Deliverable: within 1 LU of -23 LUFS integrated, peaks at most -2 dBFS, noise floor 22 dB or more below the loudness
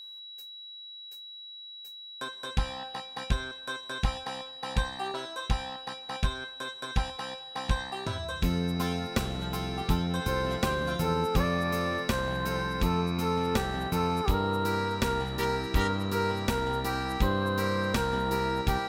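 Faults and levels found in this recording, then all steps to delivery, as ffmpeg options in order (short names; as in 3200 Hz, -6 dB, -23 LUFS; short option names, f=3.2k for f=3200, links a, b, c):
steady tone 3900 Hz; tone level -42 dBFS; loudness -30.5 LUFS; peak -11.5 dBFS; loudness target -23.0 LUFS
-> -af "bandreject=f=3.9k:w=30"
-af "volume=7.5dB"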